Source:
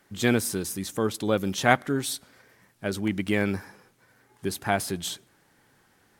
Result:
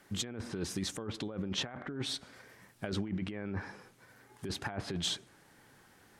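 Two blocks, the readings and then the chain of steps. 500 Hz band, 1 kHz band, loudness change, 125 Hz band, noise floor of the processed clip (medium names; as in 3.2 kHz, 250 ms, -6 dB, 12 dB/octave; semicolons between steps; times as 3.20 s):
-14.5 dB, -18.0 dB, -10.5 dB, -8.0 dB, -62 dBFS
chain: low-pass that closes with the level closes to 1.8 kHz, closed at -21.5 dBFS; compressor with a negative ratio -33 dBFS, ratio -1; trim -4.5 dB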